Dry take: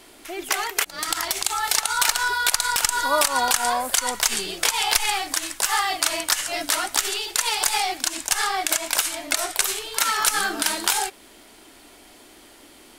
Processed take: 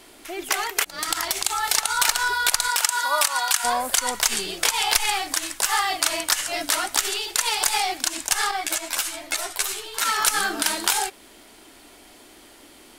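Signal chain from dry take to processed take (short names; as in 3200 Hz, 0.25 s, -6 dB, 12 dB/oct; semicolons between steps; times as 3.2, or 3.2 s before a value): 2.68–3.63 HPF 440 Hz -> 1300 Hz 12 dB/oct; 8.51–10.05 ensemble effect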